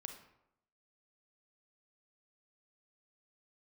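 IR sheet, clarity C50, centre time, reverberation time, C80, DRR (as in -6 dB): 7.0 dB, 20 ms, 0.80 s, 10.5 dB, 5.0 dB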